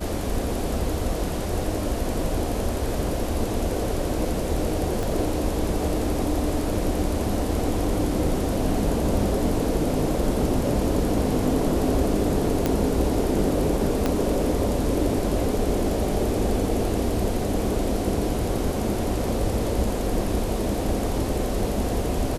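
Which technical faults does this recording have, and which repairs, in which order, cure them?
5.03 pop
12.66 pop -9 dBFS
14.06 pop -9 dBFS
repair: de-click

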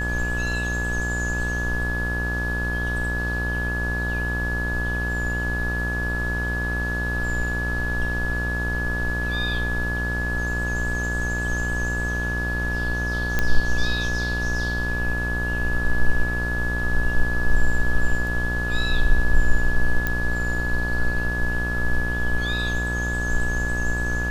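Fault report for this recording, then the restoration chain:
buzz 60 Hz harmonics 30 -27 dBFS
tone 1700 Hz -26 dBFS
13.39 pop -8 dBFS
20.07 pop -10 dBFS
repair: de-click; de-hum 60 Hz, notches 30; notch 1700 Hz, Q 30

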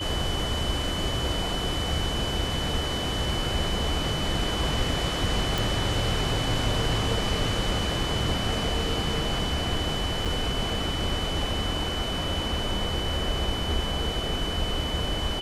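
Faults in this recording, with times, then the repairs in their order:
tone 3000 Hz -32 dBFS
5.58 pop
10.25–10.26 gap 6.6 ms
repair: de-click; notch 3000 Hz, Q 30; interpolate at 10.25, 6.6 ms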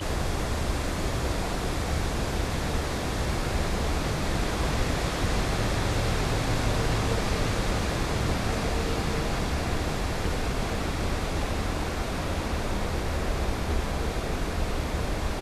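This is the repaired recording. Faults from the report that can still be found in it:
none

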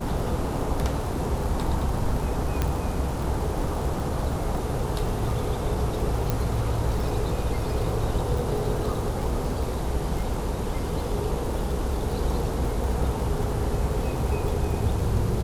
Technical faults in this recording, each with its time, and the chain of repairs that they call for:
crackle 42/s -30 dBFS
2.62 pop -11 dBFS
6.3 pop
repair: de-click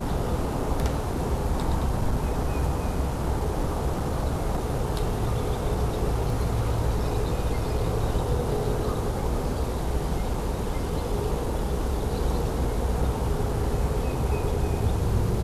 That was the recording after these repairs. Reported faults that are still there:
6.3 pop

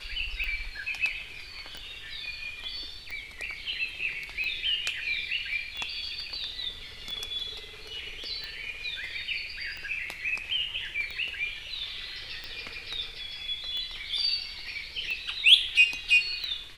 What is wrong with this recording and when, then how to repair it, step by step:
tick 45 rpm -23 dBFS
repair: de-click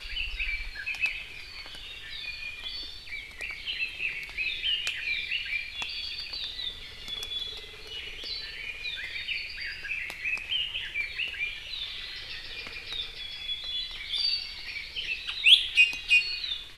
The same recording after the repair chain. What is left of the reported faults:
none

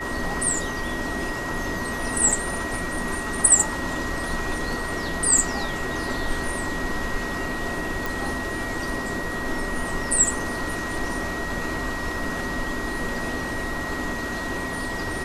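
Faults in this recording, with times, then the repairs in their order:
tone 1900 Hz -31 dBFS
8.06 pop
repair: de-click; notch 1900 Hz, Q 30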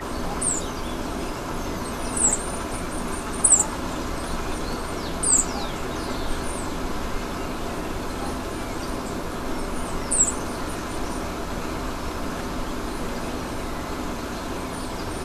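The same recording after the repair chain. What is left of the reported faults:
none

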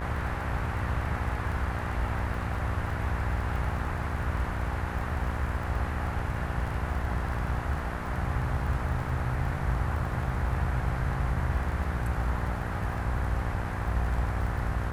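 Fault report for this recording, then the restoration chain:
buzz 60 Hz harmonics 33 -35 dBFS
crackle 28/s -37 dBFS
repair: de-click; de-hum 60 Hz, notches 33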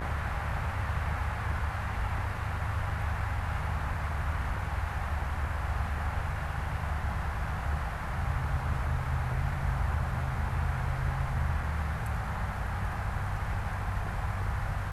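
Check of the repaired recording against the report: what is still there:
none

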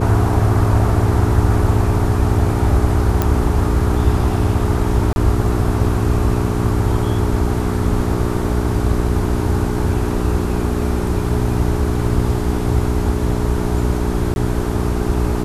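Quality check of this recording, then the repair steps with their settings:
hum 60 Hz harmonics 7 -21 dBFS
3.22 pop -3 dBFS
5.13–5.16 gap 31 ms
14.34–14.36 gap 21 ms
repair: de-click; de-hum 60 Hz, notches 7; interpolate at 5.13, 31 ms; interpolate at 14.34, 21 ms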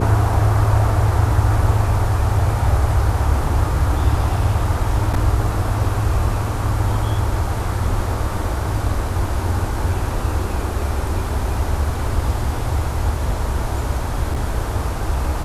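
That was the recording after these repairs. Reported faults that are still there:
none

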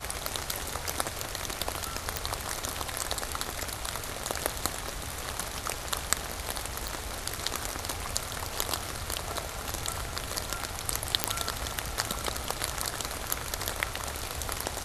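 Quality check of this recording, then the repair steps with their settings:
2.17 pop
6.88 pop
11.24 pop -2 dBFS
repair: de-click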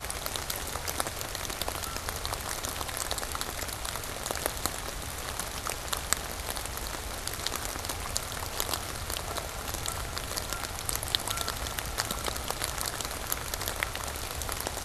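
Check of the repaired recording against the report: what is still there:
none

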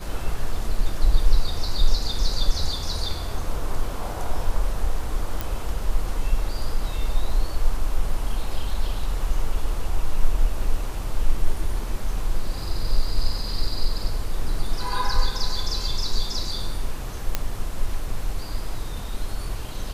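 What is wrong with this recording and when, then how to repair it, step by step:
5.41 pop
17.35 pop -7 dBFS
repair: de-click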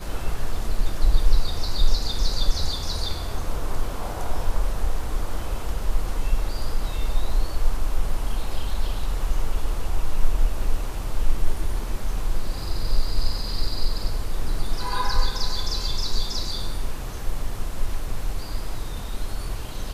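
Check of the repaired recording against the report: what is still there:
none

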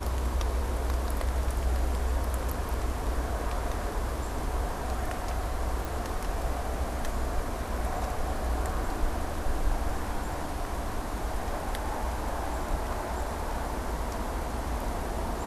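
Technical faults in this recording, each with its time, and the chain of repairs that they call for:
5.85 pop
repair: de-click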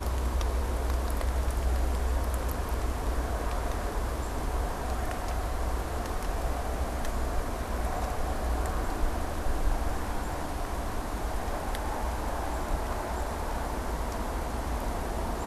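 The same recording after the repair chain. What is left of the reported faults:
none

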